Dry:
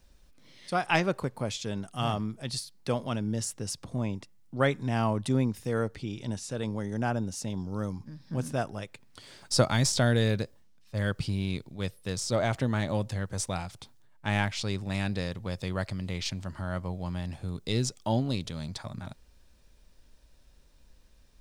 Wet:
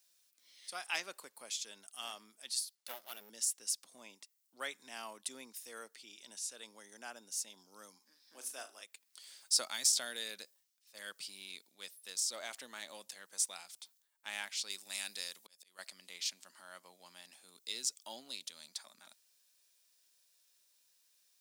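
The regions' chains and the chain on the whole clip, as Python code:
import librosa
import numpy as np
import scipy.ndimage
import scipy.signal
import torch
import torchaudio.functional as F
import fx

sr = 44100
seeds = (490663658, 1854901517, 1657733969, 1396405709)

y = fx.chain(x, sr, fx.lower_of_two(delay_ms=1.4),
    fx.resample_bad(factor=3, down='none', up='hold'),
    fx.high_shelf(hz=4900.0, db=-6.0), at=(2.75, 3.3))
y = fx.chain(y, sr, fx.highpass(hz=250.0, slope=24),
    fx.room_flutter(wall_m=6.4, rt60_s=0.24), at=(7.99, 8.82))
y = fx.chain(y, sr, fx.high_shelf(hz=4500.0, db=10.5),
    fx.auto_swell(attack_ms=627.0), at=(14.7, 15.79))
y = scipy.signal.sosfilt(scipy.signal.butter(4, 210.0, 'highpass', fs=sr, output='sos'), y)
y = np.diff(y, prepend=0.0)
y = y * librosa.db_to_amplitude(1.0)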